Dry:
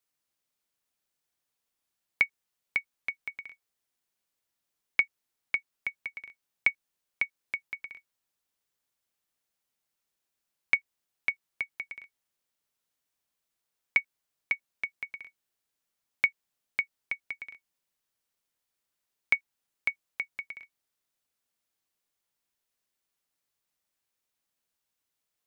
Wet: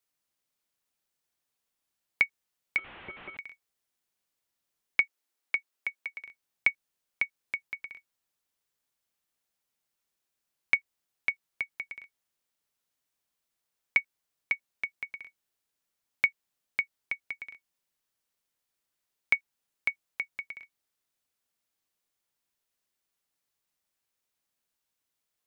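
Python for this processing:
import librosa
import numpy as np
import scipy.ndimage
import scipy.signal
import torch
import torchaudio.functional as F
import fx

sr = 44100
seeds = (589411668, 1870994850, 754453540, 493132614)

y = fx.delta_mod(x, sr, bps=16000, step_db=-41.0, at=(2.78, 3.37))
y = fx.highpass(y, sr, hz=250.0, slope=24, at=(5.01, 6.27))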